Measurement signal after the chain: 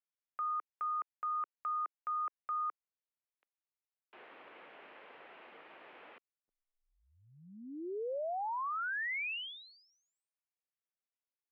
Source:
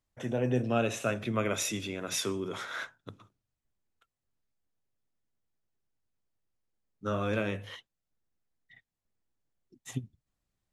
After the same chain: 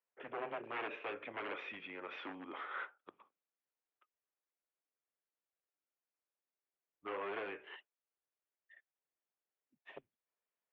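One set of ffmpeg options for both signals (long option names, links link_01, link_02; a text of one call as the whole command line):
ffmpeg -i in.wav -af "aeval=exprs='0.0422*(abs(mod(val(0)/0.0422+3,4)-2)-1)':channel_layout=same,highpass=frequency=490:width_type=q:width=0.5412,highpass=frequency=490:width_type=q:width=1.307,lowpass=frequency=2900:width_type=q:width=0.5176,lowpass=frequency=2900:width_type=q:width=0.7071,lowpass=frequency=2900:width_type=q:width=1.932,afreqshift=-110,volume=-4.5dB" out.wav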